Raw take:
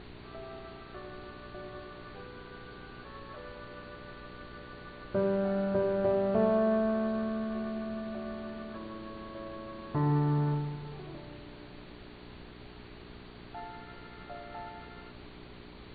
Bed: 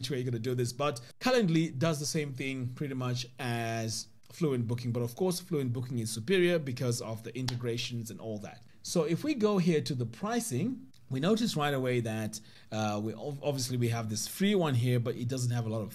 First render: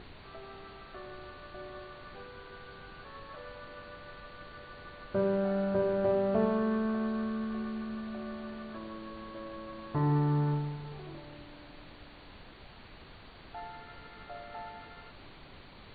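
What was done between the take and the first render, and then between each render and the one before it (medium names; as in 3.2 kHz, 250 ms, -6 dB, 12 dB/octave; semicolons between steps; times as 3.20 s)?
de-hum 60 Hz, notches 11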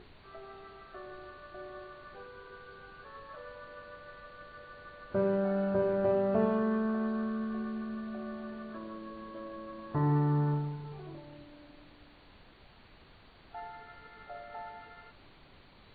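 noise print and reduce 6 dB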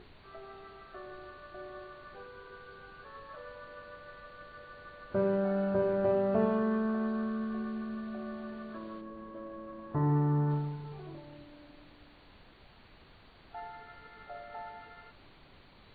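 9.00–10.49 s: low-pass 1.2 kHz -> 1.8 kHz 6 dB/octave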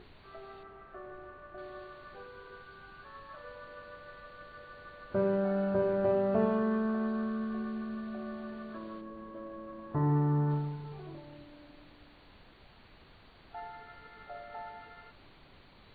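0.63–1.58 s: low-pass 1.9 kHz; 2.62–3.44 s: peaking EQ 480 Hz -13.5 dB 0.21 oct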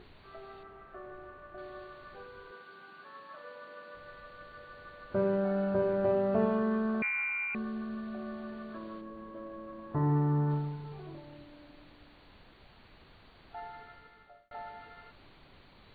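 2.51–3.95 s: high-pass 180 Hz 24 dB/octave; 7.02–7.55 s: frequency inversion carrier 2.6 kHz; 13.81–14.51 s: fade out linear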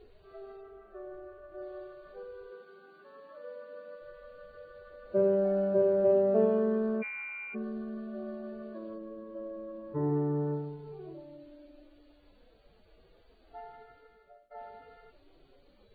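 harmonic-percussive separation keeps harmonic; graphic EQ 125/500/1000/2000/4000 Hz -7/+9/-8/-6/-4 dB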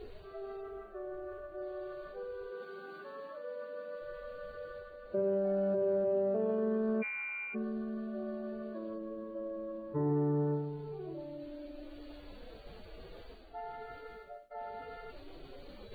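reverse; upward compressor, threshold -37 dBFS; reverse; peak limiter -24.5 dBFS, peak gain reduction 10 dB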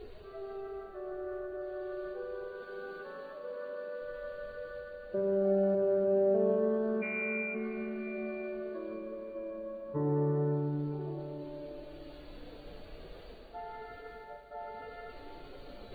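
plate-style reverb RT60 4.3 s, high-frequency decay 0.95×, pre-delay 75 ms, DRR 4 dB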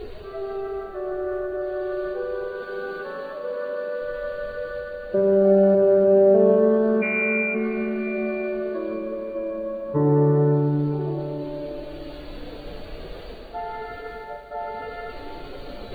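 trim +12 dB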